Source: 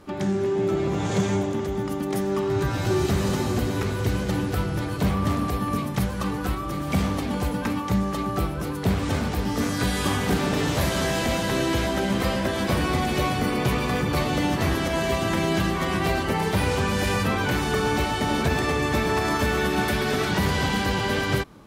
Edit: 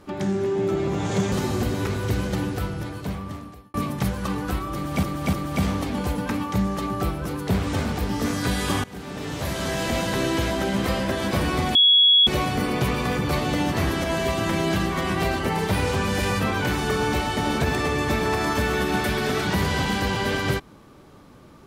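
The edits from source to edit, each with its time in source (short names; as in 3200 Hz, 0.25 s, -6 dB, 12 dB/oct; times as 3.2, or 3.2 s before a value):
1.32–3.28 cut
4.26–5.7 fade out
6.69–6.99 loop, 3 plays
10.2–11.35 fade in, from -20.5 dB
13.11 add tone 3350 Hz -12 dBFS 0.52 s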